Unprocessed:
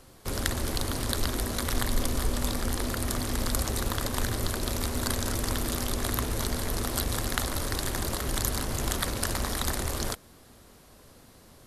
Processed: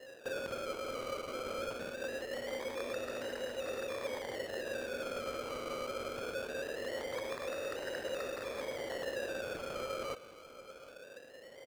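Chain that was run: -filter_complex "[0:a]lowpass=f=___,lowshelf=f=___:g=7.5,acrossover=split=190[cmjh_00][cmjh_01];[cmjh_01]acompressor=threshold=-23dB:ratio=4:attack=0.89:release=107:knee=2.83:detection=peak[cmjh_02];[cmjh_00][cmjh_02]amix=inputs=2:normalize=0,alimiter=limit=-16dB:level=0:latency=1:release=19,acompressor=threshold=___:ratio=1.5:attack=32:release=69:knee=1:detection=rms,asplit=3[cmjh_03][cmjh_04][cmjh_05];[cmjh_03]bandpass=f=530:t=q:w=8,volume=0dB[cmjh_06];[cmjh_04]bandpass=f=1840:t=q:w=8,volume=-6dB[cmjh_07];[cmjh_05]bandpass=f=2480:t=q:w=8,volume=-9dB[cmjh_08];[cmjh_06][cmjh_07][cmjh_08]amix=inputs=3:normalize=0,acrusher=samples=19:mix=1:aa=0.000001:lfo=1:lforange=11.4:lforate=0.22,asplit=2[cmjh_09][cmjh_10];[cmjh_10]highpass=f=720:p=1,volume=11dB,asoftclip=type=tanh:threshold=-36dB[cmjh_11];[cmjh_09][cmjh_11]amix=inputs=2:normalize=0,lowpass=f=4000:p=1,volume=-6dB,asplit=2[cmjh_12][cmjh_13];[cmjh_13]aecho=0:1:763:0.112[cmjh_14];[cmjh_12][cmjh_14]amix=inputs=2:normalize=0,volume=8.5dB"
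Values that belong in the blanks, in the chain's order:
6100, 360, -41dB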